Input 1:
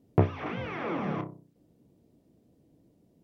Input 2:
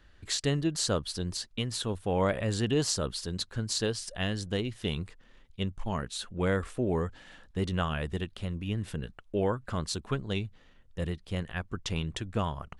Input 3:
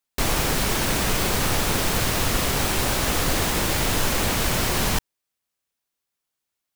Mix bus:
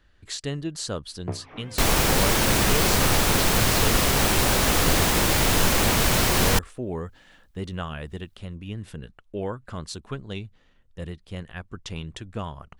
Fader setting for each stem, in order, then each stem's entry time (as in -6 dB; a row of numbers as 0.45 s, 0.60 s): -9.5 dB, -2.0 dB, +2.0 dB; 1.10 s, 0.00 s, 1.60 s